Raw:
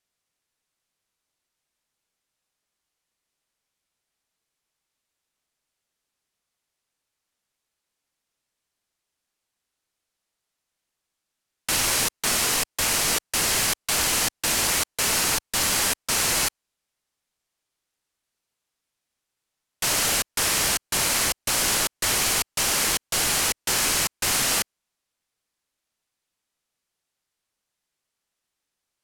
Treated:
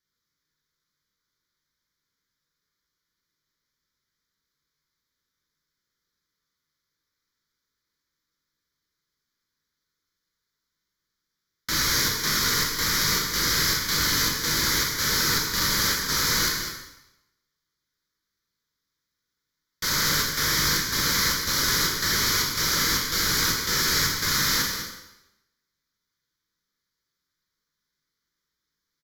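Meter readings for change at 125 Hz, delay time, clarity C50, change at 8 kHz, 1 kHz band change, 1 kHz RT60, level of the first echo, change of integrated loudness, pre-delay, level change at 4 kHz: +5.0 dB, 0.201 s, 2.5 dB, -3.0 dB, -0.5 dB, 0.95 s, -9.5 dB, -0.5 dB, 6 ms, +2.0 dB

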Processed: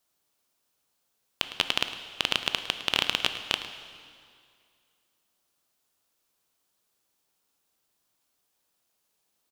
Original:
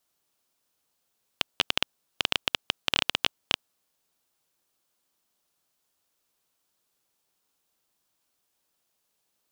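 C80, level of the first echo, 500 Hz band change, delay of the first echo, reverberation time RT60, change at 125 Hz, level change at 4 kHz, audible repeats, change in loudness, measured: 9.5 dB, -14.5 dB, +0.5 dB, 0.107 s, 2.2 s, +0.5 dB, +0.5 dB, 1, +0.5 dB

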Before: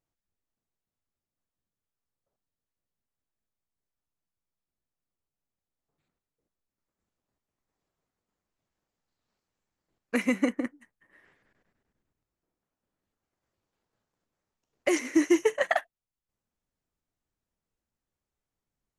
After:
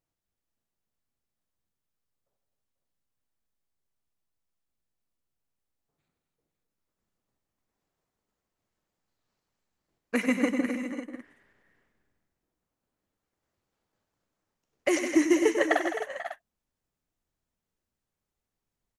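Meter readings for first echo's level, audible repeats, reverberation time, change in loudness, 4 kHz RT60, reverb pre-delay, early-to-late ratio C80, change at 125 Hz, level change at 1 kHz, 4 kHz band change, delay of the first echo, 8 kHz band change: -9.5 dB, 5, none, +0.5 dB, none, none, none, n/a, +1.5 dB, +1.5 dB, 95 ms, +1.5 dB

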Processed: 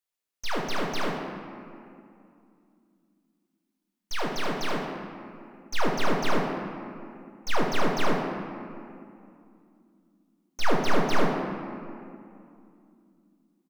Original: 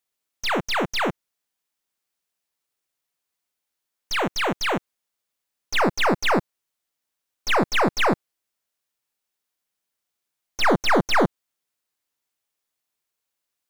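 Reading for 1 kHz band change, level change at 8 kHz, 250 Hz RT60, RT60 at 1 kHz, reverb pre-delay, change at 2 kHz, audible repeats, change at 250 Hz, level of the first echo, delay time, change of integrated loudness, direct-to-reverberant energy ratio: -5.5 dB, -6.5 dB, 3.7 s, 2.5 s, 3 ms, -7.5 dB, 1, -4.0 dB, -7.5 dB, 76 ms, -7.5 dB, -0.5 dB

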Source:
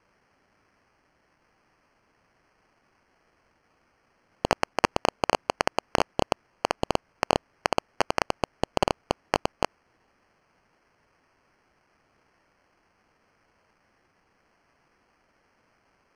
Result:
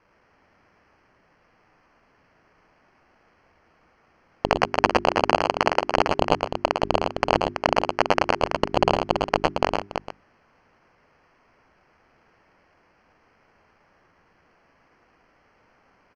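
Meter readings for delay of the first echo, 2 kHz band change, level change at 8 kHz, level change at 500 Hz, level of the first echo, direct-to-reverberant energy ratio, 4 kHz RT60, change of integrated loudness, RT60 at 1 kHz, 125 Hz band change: 0.109 s, +5.5 dB, -2.0 dB, +6.5 dB, -4.5 dB, none, none, +5.5 dB, none, +6.0 dB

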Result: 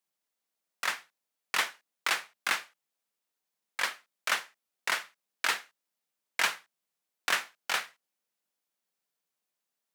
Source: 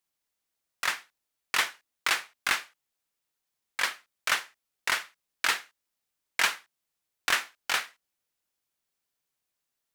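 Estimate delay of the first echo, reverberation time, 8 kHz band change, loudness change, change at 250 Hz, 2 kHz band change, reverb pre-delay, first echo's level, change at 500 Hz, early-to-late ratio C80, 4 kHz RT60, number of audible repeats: none, none, -3.0 dB, -2.5 dB, -2.0 dB, -2.5 dB, none, none, -0.5 dB, none, none, none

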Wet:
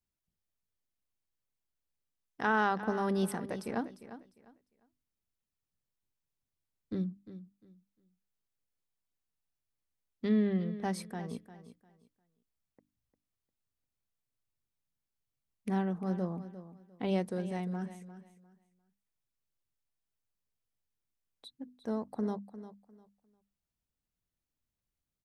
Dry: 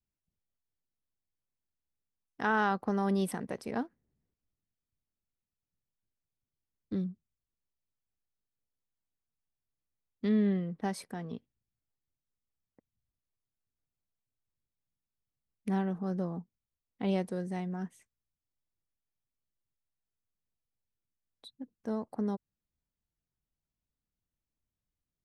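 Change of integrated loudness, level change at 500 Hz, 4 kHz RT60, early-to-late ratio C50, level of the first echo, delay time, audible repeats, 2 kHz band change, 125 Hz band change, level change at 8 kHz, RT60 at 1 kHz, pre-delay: -0.5 dB, 0.0 dB, none, none, -13.5 dB, 0.351 s, 2, 0.0 dB, -0.5 dB, 0.0 dB, none, none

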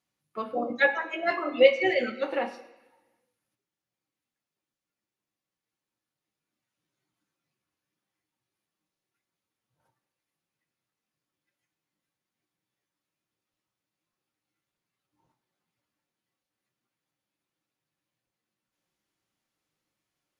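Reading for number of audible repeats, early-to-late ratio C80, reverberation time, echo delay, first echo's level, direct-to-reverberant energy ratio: none, 14.5 dB, 1.1 s, none, none, 5.0 dB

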